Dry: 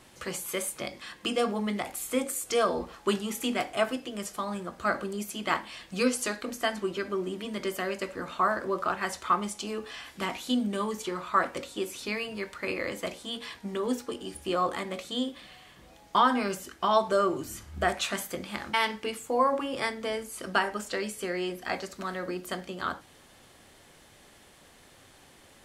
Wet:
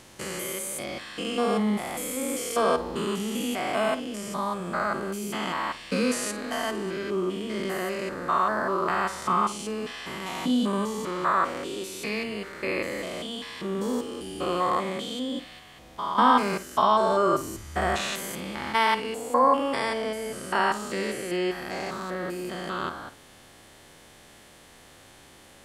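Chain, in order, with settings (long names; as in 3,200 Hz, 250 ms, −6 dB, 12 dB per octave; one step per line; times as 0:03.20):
spectrum averaged block by block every 200 ms
flutter between parallel walls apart 8.9 metres, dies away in 0.22 s
dynamic equaliser 1,000 Hz, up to +5 dB, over −44 dBFS, Q 2.4
level +5.5 dB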